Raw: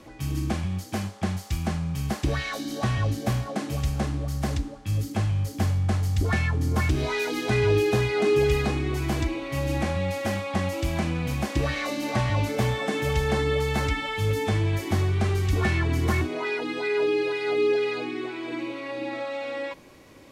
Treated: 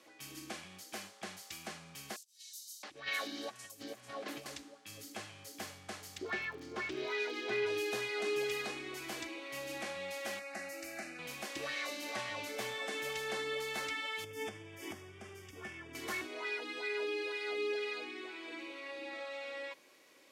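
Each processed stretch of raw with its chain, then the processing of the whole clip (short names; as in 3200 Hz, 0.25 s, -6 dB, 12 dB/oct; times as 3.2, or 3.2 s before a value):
2.16–4.46 low shelf 410 Hz +2.5 dB + negative-ratio compressor -28 dBFS, ratio -0.5 + bands offset in time highs, lows 0.67 s, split 5300 Hz
6.17–7.65 LPF 4100 Hz + bell 380 Hz +12 dB 0.21 oct + crackle 61/s -40 dBFS
10.39–11.19 bell 3500 Hz +4 dB 1.3 oct + fixed phaser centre 670 Hz, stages 8
14.24–15.95 bell 84 Hz +13.5 dB 2.9 oct + compressor, threshold -20 dBFS + Butterworth band-stop 4100 Hz, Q 3.7
whole clip: HPF 550 Hz 12 dB/oct; bell 860 Hz -7 dB 1.4 oct; gain -6 dB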